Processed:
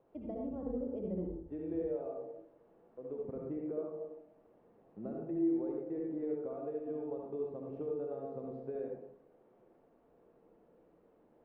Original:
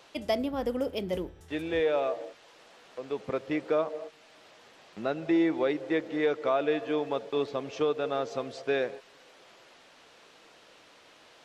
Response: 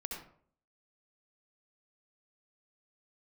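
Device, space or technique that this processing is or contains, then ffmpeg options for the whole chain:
television next door: -filter_complex "[0:a]acompressor=threshold=-30dB:ratio=6,lowpass=460[a];[1:a]atrim=start_sample=2205[b];[a][b]afir=irnorm=-1:irlink=0,volume=-2dB"

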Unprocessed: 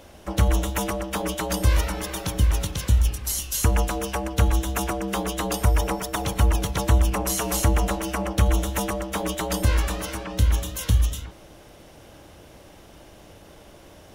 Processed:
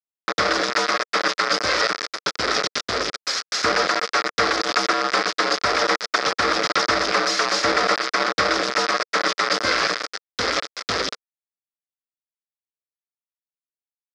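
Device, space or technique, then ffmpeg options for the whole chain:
hand-held game console: -af "acrusher=bits=3:mix=0:aa=0.000001,highpass=430,equalizer=f=470:t=q:w=4:g=3,equalizer=f=890:t=q:w=4:g=-8,equalizer=f=1.3k:t=q:w=4:g=8,equalizer=f=1.9k:t=q:w=4:g=4,equalizer=f=2.9k:t=q:w=4:g=-7,equalizer=f=5k:t=q:w=4:g=9,lowpass=f=5.2k:w=0.5412,lowpass=f=5.2k:w=1.3066,volume=6dB"

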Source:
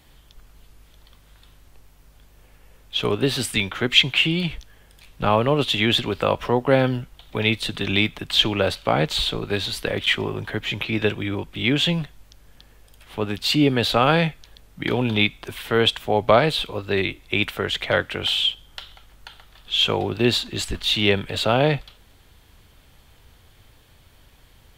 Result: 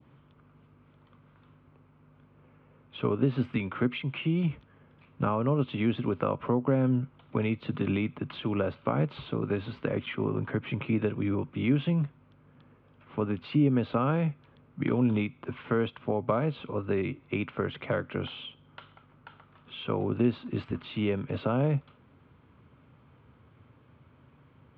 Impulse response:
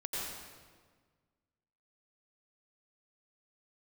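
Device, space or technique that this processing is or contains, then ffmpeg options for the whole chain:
bass amplifier: -af "adynamicequalizer=threshold=0.0224:dfrequency=1700:dqfactor=0.86:tfrequency=1700:tqfactor=0.86:attack=5:release=100:ratio=0.375:range=1.5:mode=cutabove:tftype=bell,acompressor=threshold=-23dB:ratio=3,highpass=f=87:w=0.5412,highpass=f=87:w=1.3066,equalizer=f=140:t=q:w=4:g=7,equalizer=f=250:t=q:w=4:g=7,equalizer=f=740:t=q:w=4:g=-7,equalizer=f=1.2k:t=q:w=4:g=3,equalizer=f=1.8k:t=q:w=4:g=-10,lowpass=f=2.1k:w=0.5412,lowpass=f=2.1k:w=1.3066,volume=-2dB"

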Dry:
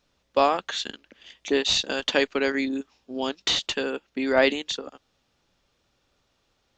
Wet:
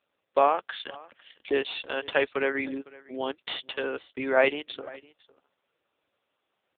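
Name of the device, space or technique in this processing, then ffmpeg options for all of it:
satellite phone: -af "highpass=340,lowpass=3.3k,aecho=1:1:506:0.0794" -ar 8000 -c:a libopencore_amrnb -b:a 5900

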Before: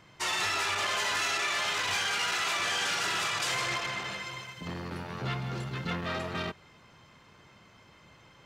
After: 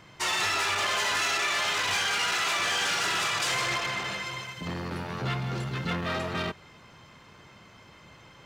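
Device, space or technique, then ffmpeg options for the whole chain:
parallel distortion: -filter_complex "[0:a]asplit=2[a][b];[b]asoftclip=type=hard:threshold=-37.5dB,volume=-7dB[c];[a][c]amix=inputs=2:normalize=0,volume=1.5dB"

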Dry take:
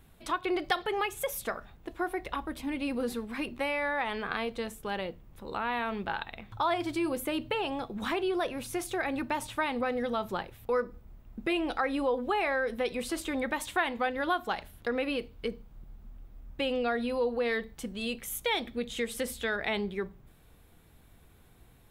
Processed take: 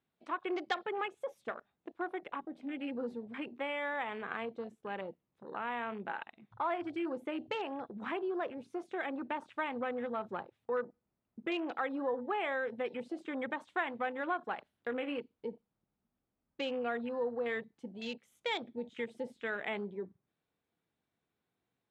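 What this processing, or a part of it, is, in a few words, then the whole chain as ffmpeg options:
over-cleaned archive recording: -filter_complex "[0:a]asettb=1/sr,asplit=3[a][b][c];[a]atrim=end=14.764[d];[b]atrim=start=14.76:end=15.19,asetpts=PTS-STARTPTS,afade=t=in:d=0.004:c=qsin,afade=t=out:st=0.426:d=0.004:c=qsin,asplit=2[e][f];[f]adelay=28,volume=-12dB[g];[e][g]amix=inputs=2:normalize=0,atrim=end_sample=18963[h];[c]atrim=start=15.186[i];[d][h]acrossfade=d=0.004:c1=hsin:c2=qsin[j];[j][i]acrossfade=d=0.004:c1=qsin:c2=hsin,highpass=180,lowpass=5.6k,afwtdn=0.0112,volume=-5.5dB"

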